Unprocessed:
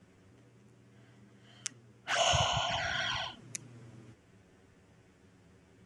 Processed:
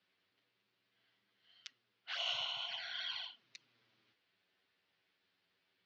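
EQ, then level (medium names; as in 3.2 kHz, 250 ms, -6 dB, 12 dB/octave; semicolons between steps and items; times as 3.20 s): band-pass filter 4.2 kHz, Q 3.9; distance through air 300 m; +9.0 dB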